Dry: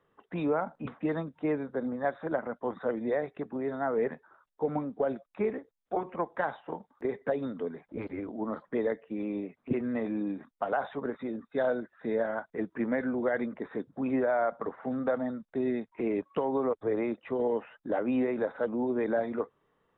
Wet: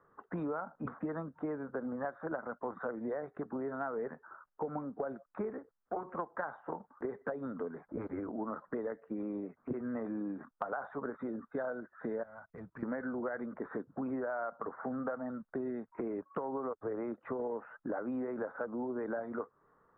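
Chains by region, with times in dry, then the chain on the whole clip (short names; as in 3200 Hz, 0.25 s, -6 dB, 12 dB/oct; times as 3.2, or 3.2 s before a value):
12.23–12.83 EQ curve 120 Hz 0 dB, 350 Hz -20 dB, 540 Hz -12 dB, 1700 Hz -13 dB, 2500 Hz -2 dB + compressor 4:1, threshold -48 dBFS + sample leveller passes 1
whole clip: resonant high shelf 2000 Hz -12.5 dB, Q 3; compressor 5:1, threshold -37 dBFS; gain +1.5 dB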